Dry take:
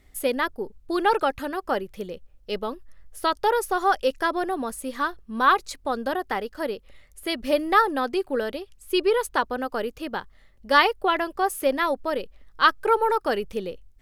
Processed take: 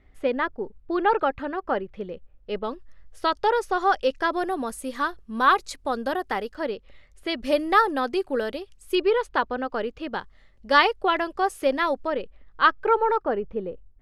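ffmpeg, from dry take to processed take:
-af "asetnsamples=n=441:p=0,asendcmd='2.64 lowpass f 5600;4.31 lowpass f 11000;6.55 lowpass f 4800;7.42 lowpass f 9700;8.95 lowpass f 3900;10.13 lowpass f 6900;12.07 lowpass f 2900;13.23 lowpass f 1200',lowpass=2.4k"

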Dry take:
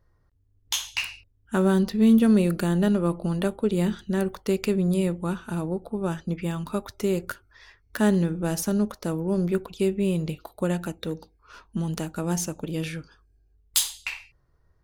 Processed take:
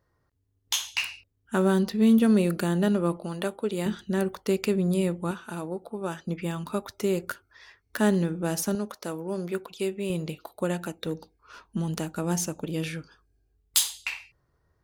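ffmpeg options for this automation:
-af "asetnsamples=n=441:p=0,asendcmd='3.17 highpass f 460;3.86 highpass f 140;5.31 highpass f 430;6.26 highpass f 170;8.75 highpass f 540;10.1 highpass f 240;11.06 highpass f 100',highpass=f=170:p=1"

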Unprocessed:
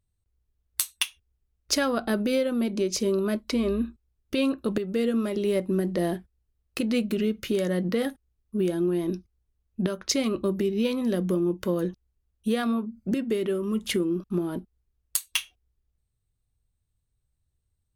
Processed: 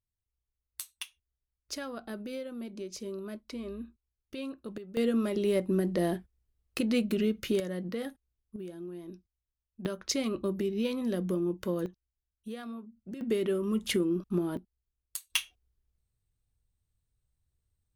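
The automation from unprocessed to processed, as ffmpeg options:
-af "asetnsamples=n=441:p=0,asendcmd='4.97 volume volume -2.5dB;7.6 volume volume -9.5dB;8.56 volume volume -16.5dB;9.85 volume volume -5.5dB;11.86 volume volume -15dB;13.21 volume volume -2.5dB;14.57 volume volume -12dB;15.3 volume volume -2.5dB',volume=-14dB"

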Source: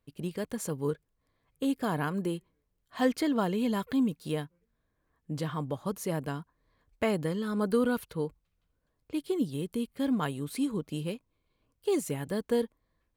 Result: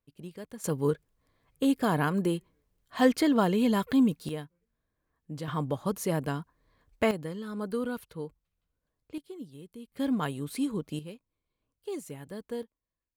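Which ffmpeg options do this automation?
-af "asetnsamples=n=441:p=0,asendcmd='0.64 volume volume 4dB;4.29 volume volume -4dB;5.48 volume volume 3dB;7.11 volume volume -5.5dB;9.18 volume volume -13dB;9.92 volume volume 0dB;10.99 volume volume -8.5dB;12.63 volume volume -17dB',volume=-8dB"

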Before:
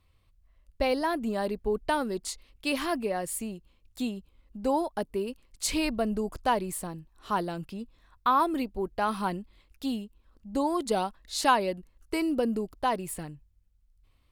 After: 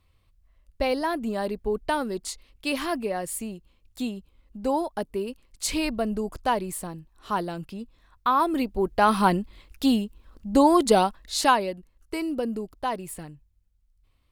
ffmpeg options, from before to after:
-af "volume=10dB,afade=t=in:st=8.36:d=0.92:silence=0.375837,afade=t=out:st=10.77:d=0.95:silence=0.281838"

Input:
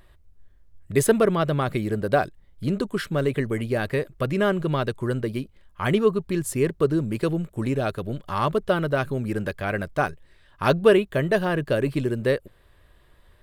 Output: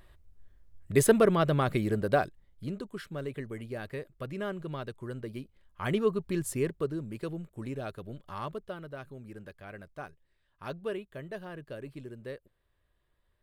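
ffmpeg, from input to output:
-af "volume=5dB,afade=t=out:st=1.89:d=0.91:silence=0.298538,afade=t=in:st=5.12:d=1.32:silence=0.398107,afade=t=out:st=6.44:d=0.5:silence=0.446684,afade=t=out:st=8.3:d=0.46:silence=0.473151"

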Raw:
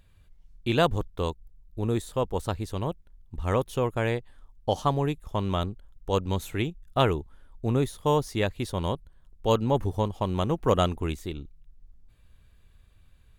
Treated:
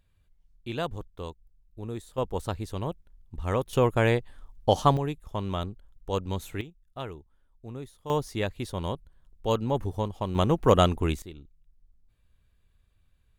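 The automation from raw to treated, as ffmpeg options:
-af "asetnsamples=n=441:p=0,asendcmd='2.18 volume volume -2dB;3.73 volume volume 4dB;4.97 volume volume -3.5dB;6.61 volume volume -14.5dB;8.1 volume volume -3dB;10.35 volume volume 3dB;11.22 volume volume -9dB',volume=-9dB"

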